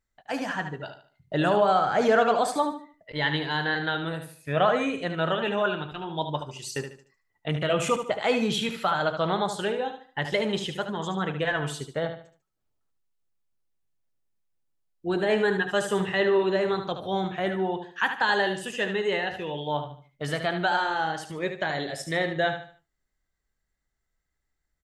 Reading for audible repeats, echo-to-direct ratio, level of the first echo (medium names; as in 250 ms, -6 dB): 3, -8.0 dB, -8.5 dB